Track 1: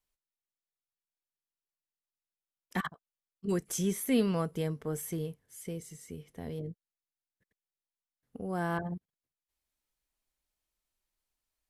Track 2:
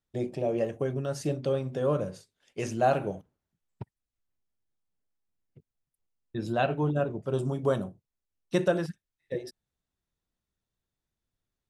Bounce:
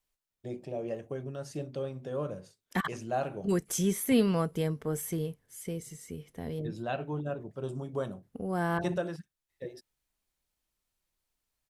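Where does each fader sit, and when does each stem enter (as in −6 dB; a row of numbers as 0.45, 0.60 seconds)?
+2.5, −7.5 decibels; 0.00, 0.30 seconds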